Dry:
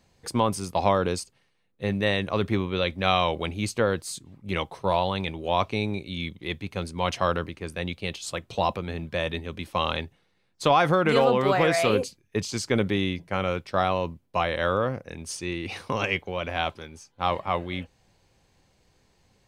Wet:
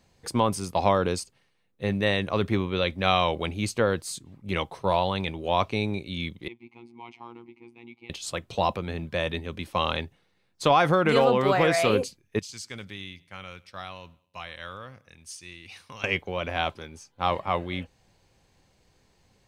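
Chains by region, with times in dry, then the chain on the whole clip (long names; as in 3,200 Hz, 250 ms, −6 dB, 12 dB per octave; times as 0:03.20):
0:06.48–0:08.10: mu-law and A-law mismatch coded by mu + formant filter u + phases set to zero 118 Hz
0:12.39–0:16.04: guitar amp tone stack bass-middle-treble 5-5-5 + repeating echo 100 ms, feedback 43%, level −23 dB
whole clip: no processing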